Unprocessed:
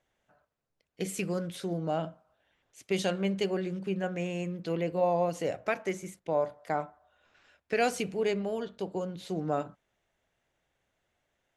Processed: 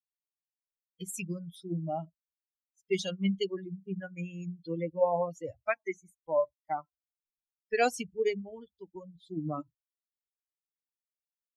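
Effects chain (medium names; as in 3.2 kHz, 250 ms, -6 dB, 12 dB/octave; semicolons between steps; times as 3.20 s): expander on every frequency bin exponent 3; trim +4.5 dB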